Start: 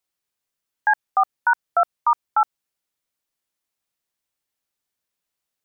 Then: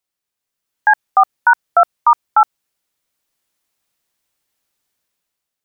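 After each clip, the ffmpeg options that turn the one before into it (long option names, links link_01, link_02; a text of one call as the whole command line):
ffmpeg -i in.wav -af "dynaudnorm=framelen=120:gausssize=11:maxgain=9.5dB" out.wav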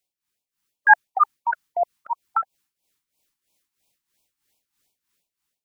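ffmpeg -i in.wav -af "tremolo=f=3.1:d=0.78,afftfilt=real='re*(1-between(b*sr/1024,490*pow(1600/490,0.5+0.5*sin(2*PI*2.9*pts/sr))/1.41,490*pow(1600/490,0.5+0.5*sin(2*PI*2.9*pts/sr))*1.41))':imag='im*(1-between(b*sr/1024,490*pow(1600/490,0.5+0.5*sin(2*PI*2.9*pts/sr))/1.41,490*pow(1600/490,0.5+0.5*sin(2*PI*2.9*pts/sr))*1.41))':win_size=1024:overlap=0.75,volume=2.5dB" out.wav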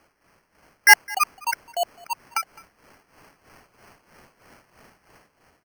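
ffmpeg -i in.wav -af "aecho=1:1:210:0.0708,aexciter=amount=8:drive=6.3:freq=2000,acrusher=samples=12:mix=1:aa=0.000001,volume=-2.5dB" out.wav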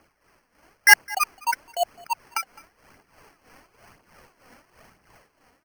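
ffmpeg -i in.wav -af "aphaser=in_gain=1:out_gain=1:delay=4.3:decay=0.42:speed=1:type=triangular,volume=-1.5dB" out.wav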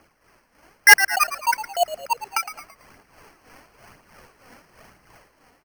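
ffmpeg -i in.wav -filter_complex "[0:a]asplit=2[link_01][link_02];[link_02]asplit=4[link_03][link_04][link_05][link_06];[link_03]adelay=111,afreqshift=-74,volume=-12dB[link_07];[link_04]adelay=222,afreqshift=-148,volume=-19.1dB[link_08];[link_05]adelay=333,afreqshift=-222,volume=-26.3dB[link_09];[link_06]adelay=444,afreqshift=-296,volume=-33.4dB[link_10];[link_07][link_08][link_09][link_10]amix=inputs=4:normalize=0[link_11];[link_01][link_11]amix=inputs=2:normalize=0,asoftclip=type=hard:threshold=-6dB,volume=3.5dB" out.wav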